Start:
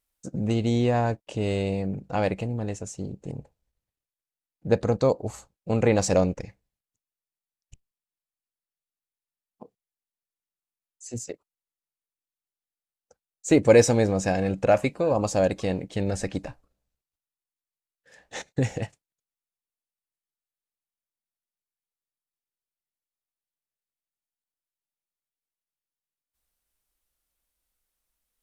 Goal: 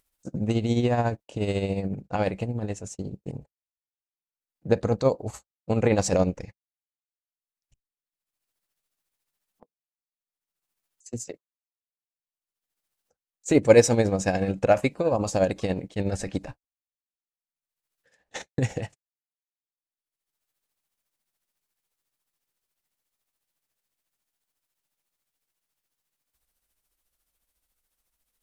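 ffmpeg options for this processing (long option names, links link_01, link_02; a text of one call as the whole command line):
ffmpeg -i in.wav -af "agate=range=-40dB:threshold=-39dB:ratio=16:detection=peak,acompressor=mode=upward:threshold=-43dB:ratio=2.5,tremolo=f=14:d=0.56,volume=2dB" out.wav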